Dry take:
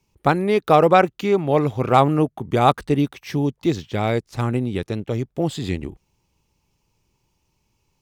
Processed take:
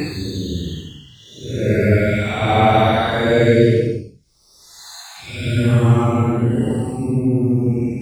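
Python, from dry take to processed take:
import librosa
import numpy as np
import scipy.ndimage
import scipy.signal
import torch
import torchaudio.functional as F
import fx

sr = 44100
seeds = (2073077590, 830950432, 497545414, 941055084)

y = fx.spec_dropout(x, sr, seeds[0], share_pct=39)
y = fx.paulstretch(y, sr, seeds[1], factor=8.2, window_s=0.1, from_s=3.73)
y = F.gain(torch.from_numpy(y), 8.0).numpy()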